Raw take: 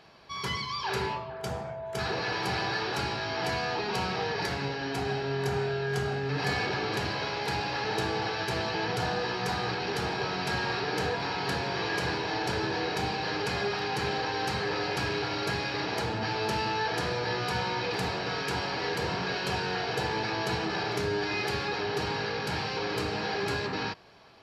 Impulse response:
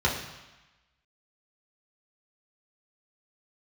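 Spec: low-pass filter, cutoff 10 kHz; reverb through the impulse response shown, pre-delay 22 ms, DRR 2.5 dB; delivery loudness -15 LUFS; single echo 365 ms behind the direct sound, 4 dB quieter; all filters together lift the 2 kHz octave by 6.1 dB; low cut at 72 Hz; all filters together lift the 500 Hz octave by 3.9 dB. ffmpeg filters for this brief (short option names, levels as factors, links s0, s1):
-filter_complex "[0:a]highpass=72,lowpass=10000,equalizer=f=500:t=o:g=4.5,equalizer=f=2000:t=o:g=7.5,aecho=1:1:365:0.631,asplit=2[s0][s1];[1:a]atrim=start_sample=2205,adelay=22[s2];[s1][s2]afir=irnorm=-1:irlink=0,volume=0.168[s3];[s0][s3]amix=inputs=2:normalize=0,volume=2.66"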